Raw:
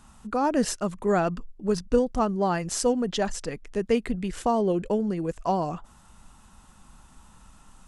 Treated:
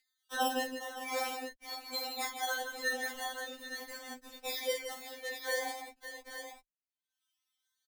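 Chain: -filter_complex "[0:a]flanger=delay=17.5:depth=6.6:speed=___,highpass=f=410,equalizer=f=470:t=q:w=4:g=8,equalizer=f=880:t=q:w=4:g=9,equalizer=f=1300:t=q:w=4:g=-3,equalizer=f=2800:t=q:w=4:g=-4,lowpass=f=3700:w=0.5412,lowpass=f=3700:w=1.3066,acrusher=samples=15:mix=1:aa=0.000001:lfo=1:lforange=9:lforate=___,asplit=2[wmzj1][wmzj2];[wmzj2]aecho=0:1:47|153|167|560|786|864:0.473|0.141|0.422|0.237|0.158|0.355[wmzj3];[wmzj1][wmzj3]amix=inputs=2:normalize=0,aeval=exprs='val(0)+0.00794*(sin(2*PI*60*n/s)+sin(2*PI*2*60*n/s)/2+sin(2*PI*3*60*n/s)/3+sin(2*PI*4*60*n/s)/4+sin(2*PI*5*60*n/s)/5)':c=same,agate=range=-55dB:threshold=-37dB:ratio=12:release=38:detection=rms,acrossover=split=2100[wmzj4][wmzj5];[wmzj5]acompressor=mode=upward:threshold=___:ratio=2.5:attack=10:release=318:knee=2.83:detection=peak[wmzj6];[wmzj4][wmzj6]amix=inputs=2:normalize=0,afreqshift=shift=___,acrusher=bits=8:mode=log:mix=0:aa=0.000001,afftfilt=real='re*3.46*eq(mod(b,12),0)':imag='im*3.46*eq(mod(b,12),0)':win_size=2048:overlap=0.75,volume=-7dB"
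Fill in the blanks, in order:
2.6, 0.44, -36dB, -28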